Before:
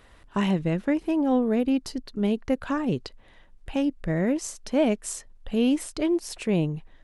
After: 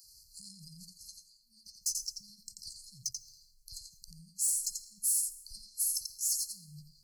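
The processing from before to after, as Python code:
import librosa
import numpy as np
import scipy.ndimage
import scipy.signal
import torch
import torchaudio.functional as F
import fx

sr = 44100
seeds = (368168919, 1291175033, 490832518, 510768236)

y = fx.dispersion(x, sr, late='lows', ms=44.0, hz=450.0)
y = fx.over_compress(y, sr, threshold_db=-29.0, ratio=-1.0)
y = fx.tilt_shelf(y, sr, db=-9.5, hz=1400.0)
y = y + 10.0 ** (-7.0 / 20.0) * np.pad(y, (int(87 * sr / 1000.0), 0))[:len(y)]
y = fx.formant_shift(y, sr, semitones=4)
y = 10.0 ** (-22.0 / 20.0) * np.tanh(y / 10.0 ** (-22.0 / 20.0))
y = fx.brickwall_bandstop(y, sr, low_hz=200.0, high_hz=4100.0)
y = fx.tone_stack(y, sr, knobs='5-5-5')
y = fx.rev_plate(y, sr, seeds[0], rt60_s=0.95, hf_ratio=0.7, predelay_ms=90, drr_db=16.0)
y = y * 10.0 ** (3.0 / 20.0)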